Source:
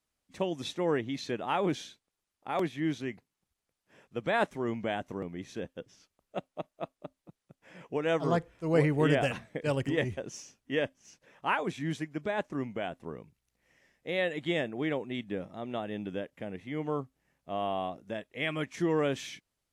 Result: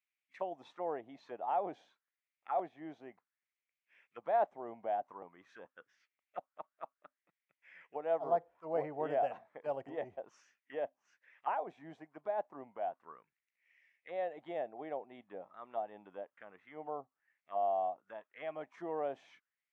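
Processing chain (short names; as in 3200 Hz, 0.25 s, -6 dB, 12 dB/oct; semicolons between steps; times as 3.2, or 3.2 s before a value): auto-wah 720–2300 Hz, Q 4.7, down, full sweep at -30.5 dBFS; gain +2.5 dB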